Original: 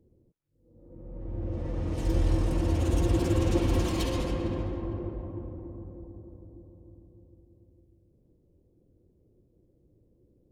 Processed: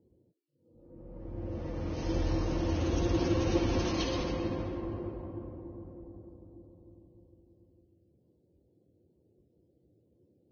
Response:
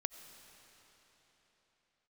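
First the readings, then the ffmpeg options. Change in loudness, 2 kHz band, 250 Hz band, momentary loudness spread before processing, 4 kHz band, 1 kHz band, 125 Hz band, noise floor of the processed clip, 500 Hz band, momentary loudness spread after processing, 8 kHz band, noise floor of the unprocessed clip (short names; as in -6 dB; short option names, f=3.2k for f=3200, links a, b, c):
-3.5 dB, -0.5 dB, -2.0 dB, 18 LU, +0.5 dB, -1.0 dB, -5.5 dB, -71 dBFS, -1.5 dB, 19 LU, -3.0 dB, -66 dBFS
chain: -filter_complex "[0:a]lowshelf=f=94:g=-9[a];[1:a]atrim=start_sample=2205,atrim=end_sample=6615[b];[a][b]afir=irnorm=-1:irlink=0" -ar 16000 -c:a libvorbis -b:a 16k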